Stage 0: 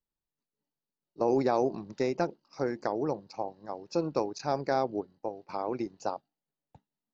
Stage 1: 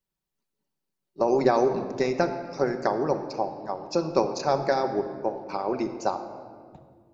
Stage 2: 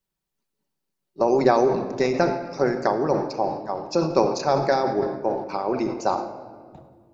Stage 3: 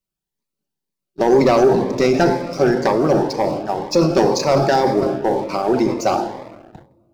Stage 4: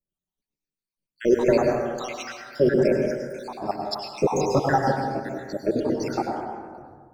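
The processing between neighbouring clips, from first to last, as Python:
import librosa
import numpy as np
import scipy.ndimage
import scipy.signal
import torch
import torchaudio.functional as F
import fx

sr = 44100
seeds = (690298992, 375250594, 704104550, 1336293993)

y1 = fx.hpss(x, sr, part='percussive', gain_db=7)
y1 = fx.room_shoebox(y1, sr, seeds[0], volume_m3=2900.0, walls='mixed', distance_m=1.1)
y2 = fx.sustainer(y1, sr, db_per_s=72.0)
y2 = y2 * librosa.db_to_amplitude(2.5)
y3 = fx.leveller(y2, sr, passes=2)
y3 = fx.notch_cascade(y3, sr, direction='rising', hz=2.0)
y3 = y3 * librosa.db_to_amplitude(2.0)
y4 = fx.spec_dropout(y3, sr, seeds[1], share_pct=79)
y4 = fx.rev_plate(y4, sr, seeds[2], rt60_s=1.6, hf_ratio=0.3, predelay_ms=90, drr_db=1.5)
y4 = y4 * librosa.db_to_amplitude(-3.0)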